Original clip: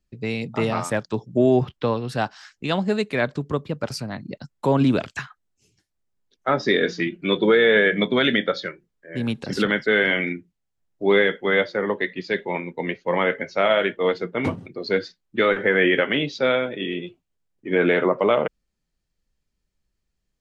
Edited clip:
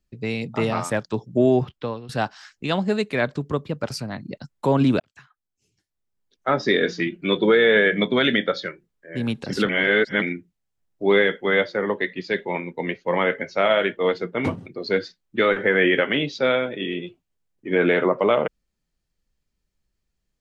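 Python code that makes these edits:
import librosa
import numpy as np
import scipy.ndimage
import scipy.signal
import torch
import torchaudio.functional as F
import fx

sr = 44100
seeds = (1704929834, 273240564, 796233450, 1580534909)

y = fx.edit(x, sr, fx.fade_out_to(start_s=1.48, length_s=0.61, floor_db=-12.5),
    fx.fade_in_span(start_s=5.0, length_s=1.52),
    fx.reverse_span(start_s=9.69, length_s=0.53), tone=tone)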